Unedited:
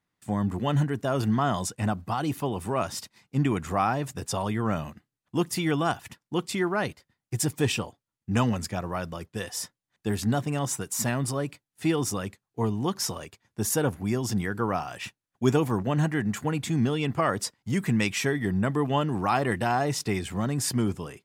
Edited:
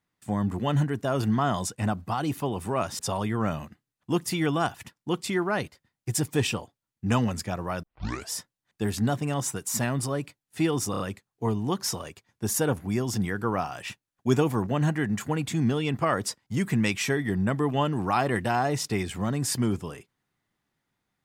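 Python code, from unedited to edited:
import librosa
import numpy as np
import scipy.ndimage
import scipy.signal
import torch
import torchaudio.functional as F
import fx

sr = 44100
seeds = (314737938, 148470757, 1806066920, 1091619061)

y = fx.edit(x, sr, fx.cut(start_s=2.99, length_s=1.25),
    fx.tape_start(start_s=9.08, length_s=0.47),
    fx.stutter(start_s=12.16, slice_s=0.03, count=4), tone=tone)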